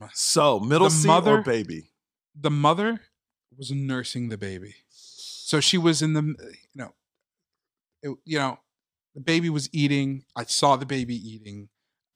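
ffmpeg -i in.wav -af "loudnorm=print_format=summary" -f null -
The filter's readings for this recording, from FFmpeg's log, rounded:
Input Integrated:    -23.3 LUFS
Input True Peak:      -3.7 dBTP
Input LRA:             4.2 LU
Input Threshold:     -34.7 LUFS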